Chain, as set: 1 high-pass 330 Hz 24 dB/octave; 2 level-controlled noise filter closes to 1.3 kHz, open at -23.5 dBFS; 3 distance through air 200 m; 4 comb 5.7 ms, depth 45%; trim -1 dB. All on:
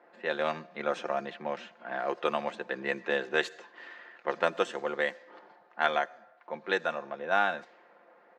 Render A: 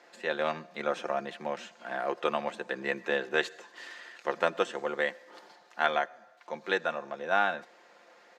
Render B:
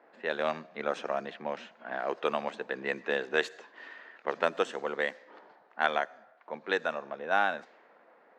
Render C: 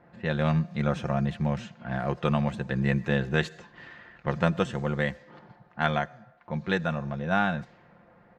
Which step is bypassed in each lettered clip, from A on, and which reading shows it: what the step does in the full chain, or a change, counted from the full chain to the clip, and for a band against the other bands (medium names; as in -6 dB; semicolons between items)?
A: 2, 8 kHz band +1.5 dB; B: 4, 125 Hz band -1.5 dB; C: 1, 125 Hz band +25.5 dB